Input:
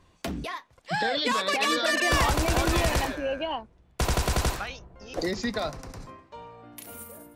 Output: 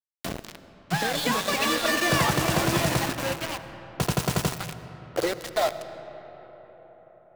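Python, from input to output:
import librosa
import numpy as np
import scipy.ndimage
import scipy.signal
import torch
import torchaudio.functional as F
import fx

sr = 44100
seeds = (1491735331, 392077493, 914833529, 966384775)

p1 = x + fx.echo_heads(x, sr, ms=117, heads='second and third', feedback_pct=42, wet_db=-12.5, dry=0)
p2 = fx.filter_sweep_highpass(p1, sr, from_hz=140.0, to_hz=660.0, start_s=4.59, end_s=5.46, q=2.9)
p3 = np.where(np.abs(p2) >= 10.0 ** (-25.0 / 20.0), p2, 0.0)
y = fx.rev_freeverb(p3, sr, rt60_s=5.0, hf_ratio=0.45, predelay_ms=45, drr_db=11.5)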